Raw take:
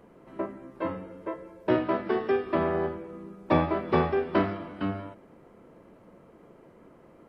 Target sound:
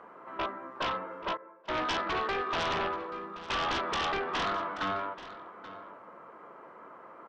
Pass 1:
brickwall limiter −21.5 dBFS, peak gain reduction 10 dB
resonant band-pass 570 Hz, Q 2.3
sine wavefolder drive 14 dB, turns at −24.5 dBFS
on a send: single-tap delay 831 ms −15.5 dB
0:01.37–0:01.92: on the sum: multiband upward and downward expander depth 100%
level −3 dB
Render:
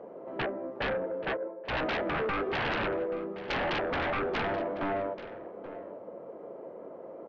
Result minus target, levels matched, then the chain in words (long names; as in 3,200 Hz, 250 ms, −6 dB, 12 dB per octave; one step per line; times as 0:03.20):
500 Hz band +5.0 dB
brickwall limiter −21.5 dBFS, peak gain reduction 10 dB
resonant band-pass 1,200 Hz, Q 2.3
sine wavefolder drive 14 dB, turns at −24.5 dBFS
on a send: single-tap delay 831 ms −15.5 dB
0:01.37–0:01.92: on the sum: multiband upward and downward expander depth 100%
level −3 dB